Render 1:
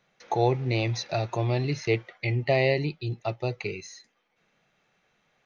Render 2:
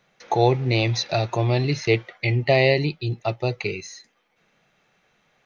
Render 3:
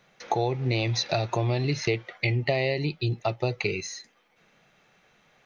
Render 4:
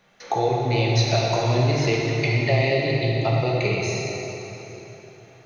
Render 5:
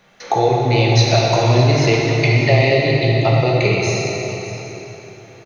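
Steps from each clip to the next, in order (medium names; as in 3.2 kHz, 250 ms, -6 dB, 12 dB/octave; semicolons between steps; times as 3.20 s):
dynamic bell 3.7 kHz, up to +4 dB, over -43 dBFS, Q 1.6; trim +5 dB
compression 6:1, threshold -25 dBFS, peak gain reduction 12.5 dB; trim +2.5 dB
plate-style reverb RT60 3.9 s, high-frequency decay 0.75×, DRR -4 dB
delay 605 ms -14.5 dB; trim +6.5 dB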